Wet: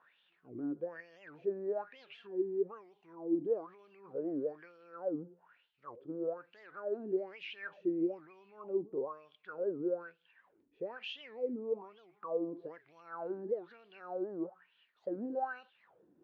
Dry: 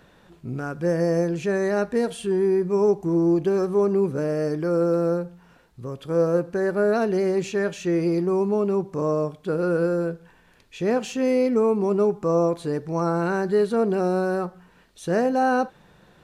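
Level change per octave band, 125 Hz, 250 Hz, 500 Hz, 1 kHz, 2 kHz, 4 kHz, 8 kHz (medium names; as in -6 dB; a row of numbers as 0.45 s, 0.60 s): -28.0 dB, -16.5 dB, -16.5 dB, -17.5 dB, -16.5 dB, -10.5 dB, under -35 dB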